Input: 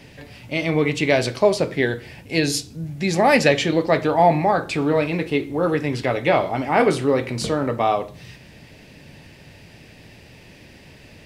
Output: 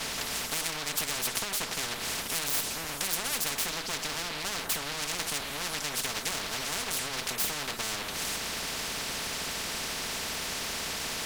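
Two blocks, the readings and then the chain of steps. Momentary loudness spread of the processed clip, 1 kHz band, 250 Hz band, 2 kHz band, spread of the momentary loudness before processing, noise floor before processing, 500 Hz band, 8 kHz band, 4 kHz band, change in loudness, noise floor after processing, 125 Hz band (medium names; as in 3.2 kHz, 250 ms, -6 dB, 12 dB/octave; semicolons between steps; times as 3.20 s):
3 LU, -15.0 dB, -20.5 dB, -8.0 dB, 9 LU, -47 dBFS, -21.5 dB, +5.0 dB, +0.5 dB, -10.5 dB, -37 dBFS, -19.0 dB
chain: comb filter that takes the minimum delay 4.5 ms; compression, threshold -27 dBFS, peak gain reduction 15.5 dB; spectrum-flattening compressor 10:1; trim +3.5 dB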